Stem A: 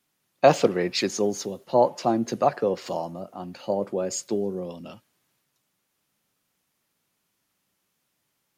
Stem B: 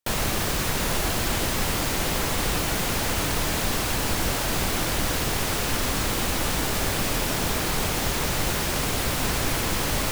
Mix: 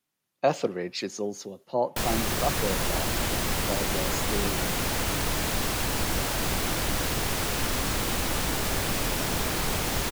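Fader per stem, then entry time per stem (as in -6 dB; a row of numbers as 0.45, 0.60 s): -7.0, -2.5 dB; 0.00, 1.90 s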